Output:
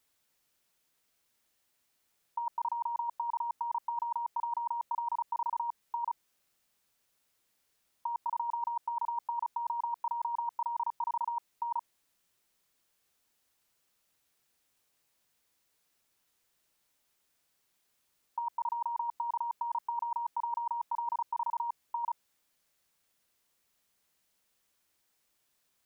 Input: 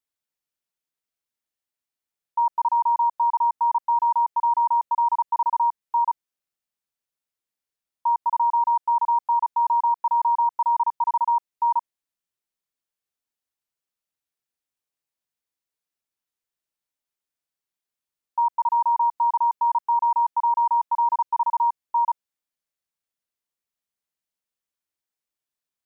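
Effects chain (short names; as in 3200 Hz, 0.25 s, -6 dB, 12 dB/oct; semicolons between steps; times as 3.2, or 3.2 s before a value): negative-ratio compressor -29 dBFS, ratio -0.5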